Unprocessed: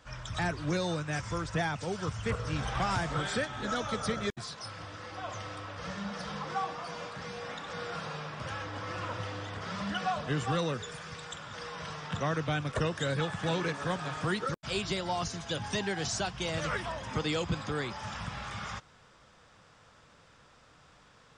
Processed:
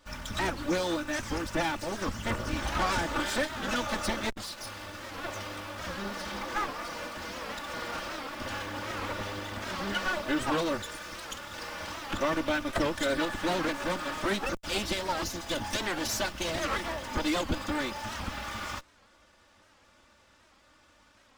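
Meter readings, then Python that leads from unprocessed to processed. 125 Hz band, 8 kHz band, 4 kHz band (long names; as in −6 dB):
−5.5 dB, +3.5 dB, +3.0 dB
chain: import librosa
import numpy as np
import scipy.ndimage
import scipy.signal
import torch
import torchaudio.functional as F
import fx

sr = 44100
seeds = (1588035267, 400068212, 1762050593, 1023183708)

p1 = fx.lower_of_two(x, sr, delay_ms=3.4)
p2 = fx.quant_dither(p1, sr, seeds[0], bits=8, dither='none')
p3 = p1 + F.gain(torch.from_numpy(p2), -4.5).numpy()
y = fx.record_warp(p3, sr, rpm=78.0, depth_cents=160.0)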